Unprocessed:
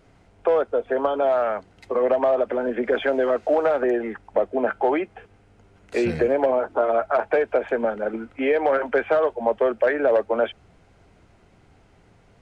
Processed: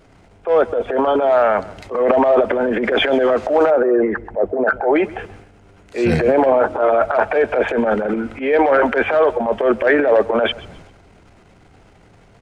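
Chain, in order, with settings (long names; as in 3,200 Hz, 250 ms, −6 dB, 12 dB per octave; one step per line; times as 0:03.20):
0:03.70–0:04.96: spectral envelope exaggerated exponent 1.5
transient designer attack −11 dB, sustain +9 dB
repeating echo 133 ms, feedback 32%, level −19.5 dB
level +6.5 dB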